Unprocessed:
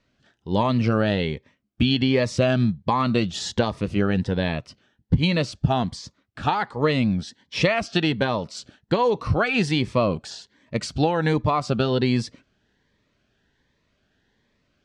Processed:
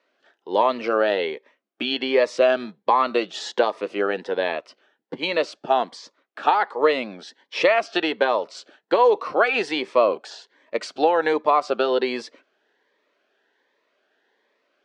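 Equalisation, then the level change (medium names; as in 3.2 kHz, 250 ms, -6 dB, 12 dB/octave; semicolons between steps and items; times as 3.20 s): high-pass 390 Hz 24 dB/octave; low-pass 1.9 kHz 6 dB/octave; +5.5 dB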